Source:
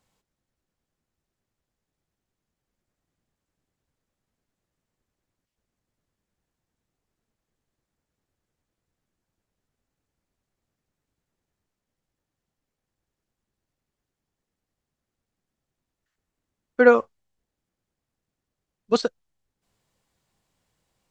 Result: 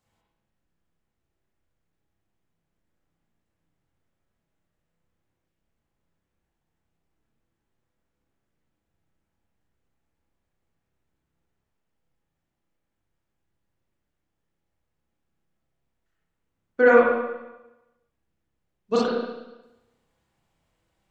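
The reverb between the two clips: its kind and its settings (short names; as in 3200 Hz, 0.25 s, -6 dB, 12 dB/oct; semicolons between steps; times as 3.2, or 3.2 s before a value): spring tank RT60 1 s, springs 30/36/59 ms, chirp 70 ms, DRR -6 dB; gain -5 dB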